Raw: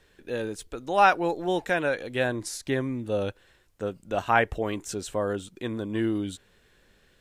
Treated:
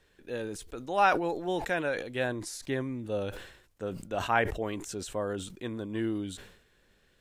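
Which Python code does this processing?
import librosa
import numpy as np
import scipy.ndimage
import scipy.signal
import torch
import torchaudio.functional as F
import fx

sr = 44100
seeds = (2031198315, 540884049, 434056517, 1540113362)

y = fx.sustainer(x, sr, db_per_s=79.0)
y = F.gain(torch.from_numpy(y), -5.0).numpy()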